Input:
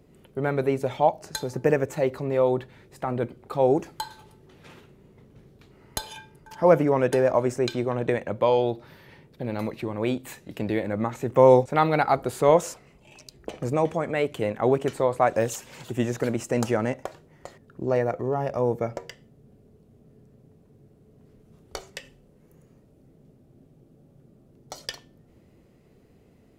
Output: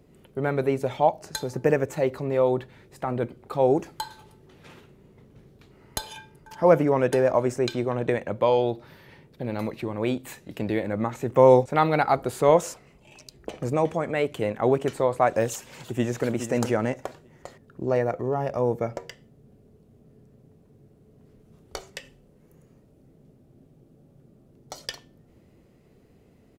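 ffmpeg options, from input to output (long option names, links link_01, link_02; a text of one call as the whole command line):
ffmpeg -i in.wav -filter_complex "[0:a]asplit=2[link_01][link_02];[link_02]afade=type=in:start_time=15.73:duration=0.01,afade=type=out:start_time=16.27:duration=0.01,aecho=0:1:420|840|1260:0.354813|0.0887033|0.0221758[link_03];[link_01][link_03]amix=inputs=2:normalize=0" out.wav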